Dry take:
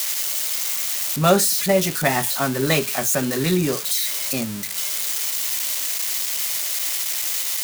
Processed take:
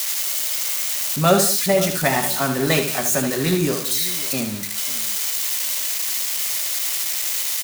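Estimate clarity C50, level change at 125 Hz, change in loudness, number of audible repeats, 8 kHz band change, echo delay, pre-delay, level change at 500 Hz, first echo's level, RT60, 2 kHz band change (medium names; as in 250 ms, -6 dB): no reverb, +0.5 dB, +1.0 dB, 3, +1.0 dB, 75 ms, no reverb, +1.0 dB, -7.5 dB, no reverb, +1.0 dB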